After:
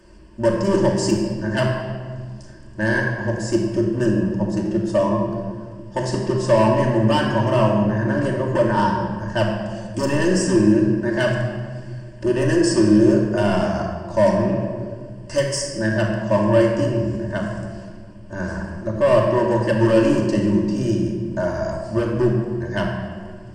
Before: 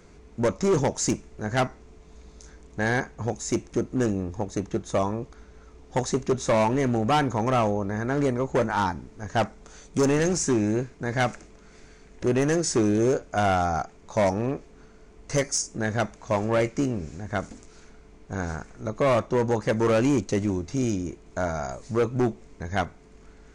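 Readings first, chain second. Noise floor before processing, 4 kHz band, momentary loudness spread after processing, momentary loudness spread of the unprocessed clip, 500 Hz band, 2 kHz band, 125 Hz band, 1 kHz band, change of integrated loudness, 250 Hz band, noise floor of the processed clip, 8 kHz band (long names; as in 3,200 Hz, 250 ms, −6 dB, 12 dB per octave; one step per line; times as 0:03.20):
−52 dBFS, +5.5 dB, 14 LU, 10 LU, +6.0 dB, +5.5 dB, +7.0 dB, +2.5 dB, +6.0 dB, +7.5 dB, −38 dBFS, −1.5 dB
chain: EQ curve with evenly spaced ripples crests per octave 1.3, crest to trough 14 dB
rectangular room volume 2,500 cubic metres, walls mixed, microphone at 2.6 metres
level −2 dB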